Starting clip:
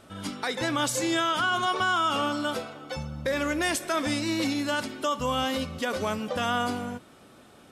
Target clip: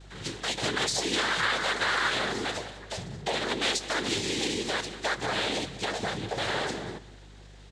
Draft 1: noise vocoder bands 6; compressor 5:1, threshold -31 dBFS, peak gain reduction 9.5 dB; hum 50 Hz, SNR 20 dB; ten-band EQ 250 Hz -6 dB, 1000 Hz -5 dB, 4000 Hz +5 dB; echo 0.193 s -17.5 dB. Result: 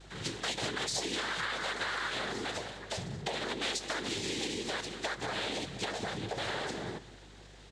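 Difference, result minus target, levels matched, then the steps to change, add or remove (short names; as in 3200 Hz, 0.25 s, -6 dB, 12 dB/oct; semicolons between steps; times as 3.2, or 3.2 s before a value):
compressor: peak gain reduction +9.5 dB
remove: compressor 5:1, threshold -31 dBFS, peak gain reduction 9.5 dB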